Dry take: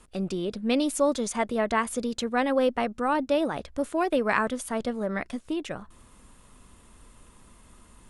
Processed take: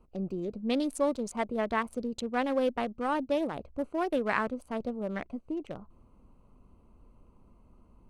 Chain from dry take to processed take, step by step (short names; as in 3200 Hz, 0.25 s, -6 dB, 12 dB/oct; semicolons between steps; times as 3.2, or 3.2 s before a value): Wiener smoothing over 25 samples; gain -4 dB